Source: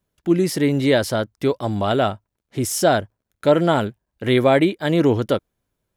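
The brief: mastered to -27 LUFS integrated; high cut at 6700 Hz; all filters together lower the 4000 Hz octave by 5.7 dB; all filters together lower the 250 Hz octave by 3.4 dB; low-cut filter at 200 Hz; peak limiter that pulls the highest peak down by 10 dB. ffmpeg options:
-af "highpass=200,lowpass=6.7k,equalizer=f=250:t=o:g=-3,equalizer=f=4k:t=o:g=-7,volume=-1dB,alimiter=limit=-15dB:level=0:latency=1"

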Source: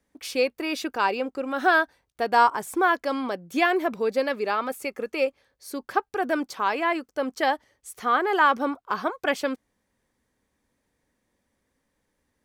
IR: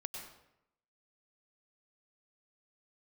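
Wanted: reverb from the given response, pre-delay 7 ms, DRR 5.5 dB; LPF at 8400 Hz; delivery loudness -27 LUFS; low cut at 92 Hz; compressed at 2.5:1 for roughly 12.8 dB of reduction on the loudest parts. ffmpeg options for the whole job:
-filter_complex "[0:a]highpass=92,lowpass=8.4k,acompressor=threshold=-34dB:ratio=2.5,asplit=2[a][b];[1:a]atrim=start_sample=2205,adelay=7[c];[b][c]afir=irnorm=-1:irlink=0,volume=-4dB[d];[a][d]amix=inputs=2:normalize=0,volume=6.5dB"

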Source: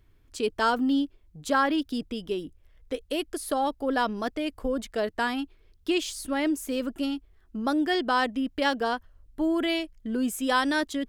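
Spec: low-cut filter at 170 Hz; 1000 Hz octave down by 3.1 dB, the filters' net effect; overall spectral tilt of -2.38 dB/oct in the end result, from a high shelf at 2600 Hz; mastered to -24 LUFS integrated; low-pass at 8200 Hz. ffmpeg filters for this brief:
-af "highpass=170,lowpass=8.2k,equalizer=f=1k:t=o:g=-5,highshelf=f=2.6k:g=6,volume=4.5dB"

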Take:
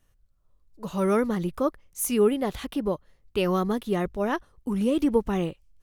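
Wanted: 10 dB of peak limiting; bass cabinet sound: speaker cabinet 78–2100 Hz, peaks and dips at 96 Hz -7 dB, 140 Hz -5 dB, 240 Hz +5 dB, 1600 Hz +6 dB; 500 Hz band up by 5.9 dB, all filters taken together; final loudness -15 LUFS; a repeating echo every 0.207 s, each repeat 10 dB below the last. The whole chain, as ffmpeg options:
-af "equalizer=f=500:t=o:g=7,alimiter=limit=-15.5dB:level=0:latency=1,highpass=f=78:w=0.5412,highpass=f=78:w=1.3066,equalizer=f=96:t=q:w=4:g=-7,equalizer=f=140:t=q:w=4:g=-5,equalizer=f=240:t=q:w=4:g=5,equalizer=f=1.6k:t=q:w=4:g=6,lowpass=f=2.1k:w=0.5412,lowpass=f=2.1k:w=1.3066,aecho=1:1:207|414|621|828:0.316|0.101|0.0324|0.0104,volume=9.5dB"

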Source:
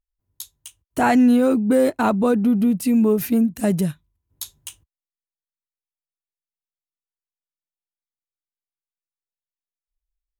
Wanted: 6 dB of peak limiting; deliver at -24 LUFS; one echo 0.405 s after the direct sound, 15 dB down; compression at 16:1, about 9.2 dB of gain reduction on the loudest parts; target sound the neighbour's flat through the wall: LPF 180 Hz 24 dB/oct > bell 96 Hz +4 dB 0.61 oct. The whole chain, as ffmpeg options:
-af "acompressor=threshold=-21dB:ratio=16,alimiter=limit=-19dB:level=0:latency=1,lowpass=f=180:w=0.5412,lowpass=f=180:w=1.3066,equalizer=f=96:t=o:w=0.61:g=4,aecho=1:1:405:0.178,volume=11.5dB"

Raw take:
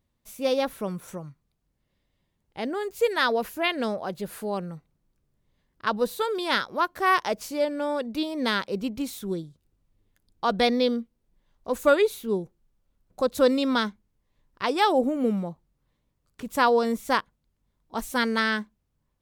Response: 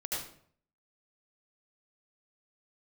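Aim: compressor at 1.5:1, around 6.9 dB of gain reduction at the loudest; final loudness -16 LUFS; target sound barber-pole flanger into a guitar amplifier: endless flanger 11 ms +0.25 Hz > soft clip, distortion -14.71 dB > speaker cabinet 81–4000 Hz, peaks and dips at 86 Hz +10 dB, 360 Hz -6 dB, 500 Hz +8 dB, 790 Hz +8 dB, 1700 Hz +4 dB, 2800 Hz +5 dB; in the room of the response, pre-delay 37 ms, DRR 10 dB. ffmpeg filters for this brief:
-filter_complex "[0:a]acompressor=threshold=-34dB:ratio=1.5,asplit=2[a][b];[1:a]atrim=start_sample=2205,adelay=37[c];[b][c]afir=irnorm=-1:irlink=0,volume=-13.5dB[d];[a][d]amix=inputs=2:normalize=0,asplit=2[e][f];[f]adelay=11,afreqshift=0.25[g];[e][g]amix=inputs=2:normalize=1,asoftclip=threshold=-26dB,highpass=81,equalizer=f=86:t=q:w=4:g=10,equalizer=f=360:t=q:w=4:g=-6,equalizer=f=500:t=q:w=4:g=8,equalizer=f=790:t=q:w=4:g=8,equalizer=f=1.7k:t=q:w=4:g=4,equalizer=f=2.8k:t=q:w=4:g=5,lowpass=f=4k:w=0.5412,lowpass=f=4k:w=1.3066,volume=16.5dB"

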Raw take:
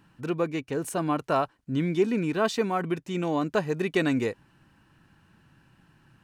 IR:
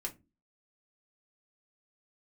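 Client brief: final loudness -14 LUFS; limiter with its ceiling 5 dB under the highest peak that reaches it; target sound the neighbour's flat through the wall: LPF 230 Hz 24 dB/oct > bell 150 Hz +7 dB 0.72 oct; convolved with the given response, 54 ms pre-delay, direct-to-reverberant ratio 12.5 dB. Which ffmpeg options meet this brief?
-filter_complex "[0:a]alimiter=limit=-18dB:level=0:latency=1,asplit=2[a][b];[1:a]atrim=start_sample=2205,adelay=54[c];[b][c]afir=irnorm=-1:irlink=0,volume=-12.5dB[d];[a][d]amix=inputs=2:normalize=0,lowpass=f=230:w=0.5412,lowpass=f=230:w=1.3066,equalizer=f=150:t=o:w=0.72:g=7,volume=17dB"

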